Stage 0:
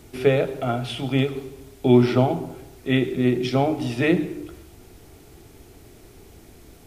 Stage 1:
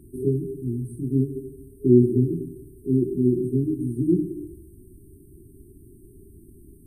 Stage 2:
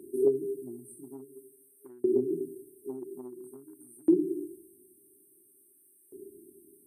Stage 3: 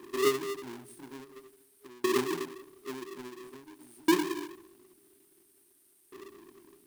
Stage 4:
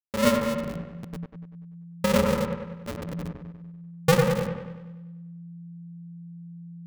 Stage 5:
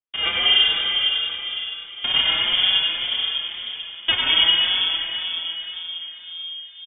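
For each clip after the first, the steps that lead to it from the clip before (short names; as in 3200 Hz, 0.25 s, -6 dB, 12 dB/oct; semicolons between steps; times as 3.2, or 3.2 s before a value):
FFT band-reject 410–8200 Hz; high shelf 10000 Hz -6.5 dB
compressor 6:1, threshold -22 dBFS, peak gain reduction 12 dB; LFO high-pass saw up 0.49 Hz 400–1800 Hz; gain +2 dB
half-waves squared off; gain -5 dB
level-crossing sampler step -35 dBFS; ring modulator 170 Hz; dark delay 97 ms, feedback 54%, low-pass 2100 Hz, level -4 dB; gain +7.5 dB
digital reverb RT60 4.2 s, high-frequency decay 0.8×, pre-delay 70 ms, DRR -4.5 dB; inverted band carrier 3400 Hz; endless flanger 5 ms +1.9 Hz; gain +3 dB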